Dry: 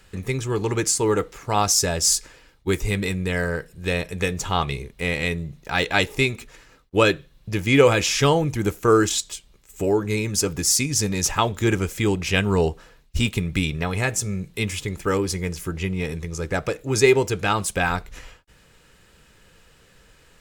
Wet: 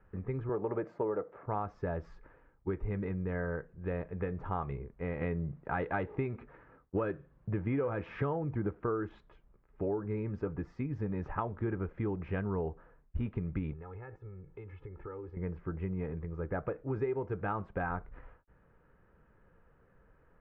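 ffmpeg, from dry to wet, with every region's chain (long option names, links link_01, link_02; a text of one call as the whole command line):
ffmpeg -i in.wav -filter_complex "[0:a]asettb=1/sr,asplit=3[link_01][link_02][link_03];[link_01]atrim=end=0.494[link_04];[link_02]atrim=start=0.49:end=1.46,asetpts=PTS-STARTPTS,afade=type=in:duration=0.004:curve=qsin,afade=type=out:start_time=0.966:duration=0.004:curve=qsin,highpass=140,equalizer=frequency=600:width=2.4:gain=12[link_05];[link_03]atrim=start=1.456[link_06];[link_04][link_05]acrossfade=duration=0.004:curve1=hsin:curve2=qsin[link_07];[link_07][link_06]acrossfade=duration=0.004:curve1=qsin:curve2=hsin,asettb=1/sr,asplit=3[link_08][link_09][link_10];[link_08]atrim=end=5.214[link_11];[link_09]atrim=start=5.21:end=8.84,asetpts=PTS-STARTPTS,afade=type=in:duration=0.004:curve=qsin,afade=type=out:start_time=3.626:duration=0.004:curve=qsin,acontrast=35,highpass=56[link_12];[link_10]atrim=start=8.836[link_13];[link_11][link_12]acrossfade=duration=0.004:curve1=hsin:curve2=qsin[link_14];[link_14][link_13]acrossfade=duration=0.004:curve1=qsin:curve2=hsin,asettb=1/sr,asplit=3[link_15][link_16][link_17];[link_15]atrim=end=13.734[link_18];[link_16]atrim=start=13.73:end=15.37,asetpts=PTS-STARTPTS,afade=type=in:duration=0.004:curve=qsin,afade=type=out:start_time=1.636:duration=0.004:curve=qsin,acompressor=threshold=-33dB:ratio=16:attack=3.2:release=140:knee=1:detection=peak,aecho=1:1:2.3:0.68,atrim=end_sample=72324[link_19];[link_17]atrim=start=15.366[link_20];[link_18][link_19]acrossfade=duration=0.004:curve1=hsin:curve2=qsin[link_21];[link_21][link_20]acrossfade=duration=0.004:curve1=qsin:curve2=hsin,lowpass=frequency=1500:width=0.5412,lowpass=frequency=1500:width=1.3066,acompressor=threshold=-21dB:ratio=10,volume=-8.5dB" out.wav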